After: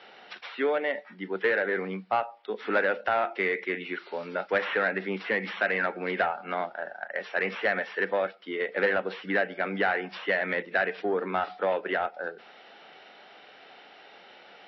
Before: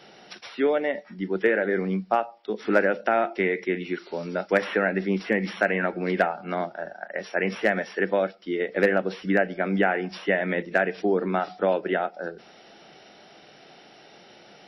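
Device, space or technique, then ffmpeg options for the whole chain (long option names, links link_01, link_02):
overdrive pedal into a guitar cabinet: -filter_complex "[0:a]asplit=2[link_01][link_02];[link_02]highpass=frequency=720:poles=1,volume=13dB,asoftclip=type=tanh:threshold=-9dB[link_03];[link_01][link_03]amix=inputs=2:normalize=0,lowpass=frequency=2600:poles=1,volume=-6dB,highpass=100,equalizer=frequency=150:width_type=q:width=4:gain=-9,equalizer=frequency=210:width_type=q:width=4:gain=-3,equalizer=frequency=340:width_type=q:width=4:gain=-6,equalizer=frequency=640:width_type=q:width=4:gain=-4,lowpass=frequency=4300:width=0.5412,lowpass=frequency=4300:width=1.3066,volume=-4dB"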